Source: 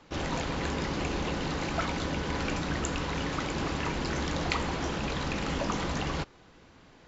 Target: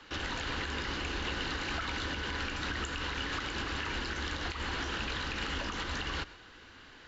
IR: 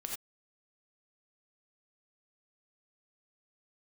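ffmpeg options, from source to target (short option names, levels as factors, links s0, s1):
-filter_complex "[0:a]asplit=2[s0][s1];[1:a]atrim=start_sample=2205,asetrate=34839,aresample=44100[s2];[s1][s2]afir=irnorm=-1:irlink=0,volume=0.119[s3];[s0][s3]amix=inputs=2:normalize=0,acrossover=split=130[s4][s5];[s5]acompressor=threshold=0.0251:ratio=6[s6];[s4][s6]amix=inputs=2:normalize=0,equalizer=f=160:t=o:w=0.67:g=-10,equalizer=f=630:t=o:w=0.67:g=-5,equalizer=f=1600:t=o:w=0.67:g=9,equalizer=f=4000:t=o:w=0.67:g=6,alimiter=level_in=1.26:limit=0.0631:level=0:latency=1:release=143,volume=0.794,equalizer=f=2900:w=7.4:g=7.5"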